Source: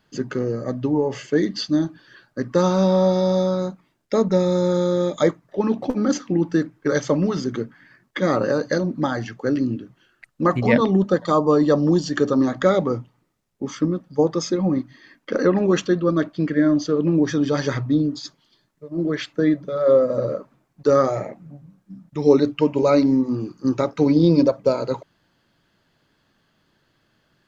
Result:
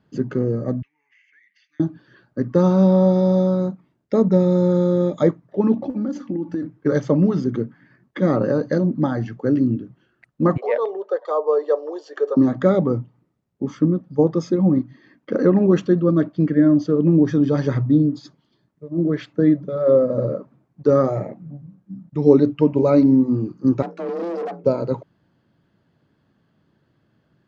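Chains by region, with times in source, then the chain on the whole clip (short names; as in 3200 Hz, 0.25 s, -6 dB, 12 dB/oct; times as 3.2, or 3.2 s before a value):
0.82–1.8 elliptic band-pass 2200–6400 Hz, stop band 60 dB + resonant high shelf 2900 Hz -13 dB, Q 3 + compressor 4:1, threshold -49 dBFS
5.74–6.63 comb 3.5 ms, depth 53% + compressor 5:1, threshold -25 dBFS
10.57–12.37 Chebyshev high-pass 420 Hz, order 5 + high shelf 2600 Hz -8 dB
23.82–24.64 notches 50/100/150/200/250/300/350/400 Hz + tube stage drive 25 dB, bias 0.65 + frequency shift +170 Hz
whole clip: HPF 110 Hz; tilt -3.5 dB/oct; gain -3 dB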